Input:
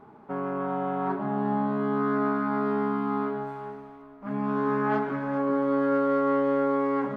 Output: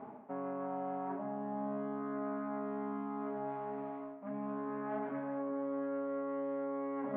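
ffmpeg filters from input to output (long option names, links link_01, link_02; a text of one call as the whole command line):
ffmpeg -i in.wav -af "areverse,acompressor=threshold=-41dB:ratio=6,areverse,highpass=140,equalizer=frequency=160:width_type=q:width=4:gain=-4,equalizer=frequency=250:width_type=q:width=4:gain=6,equalizer=frequency=350:width_type=q:width=4:gain=-5,equalizer=frequency=640:width_type=q:width=4:gain=9,equalizer=frequency=1400:width_type=q:width=4:gain=-5,lowpass=frequency=2700:width=0.5412,lowpass=frequency=2700:width=1.3066,volume=2dB" out.wav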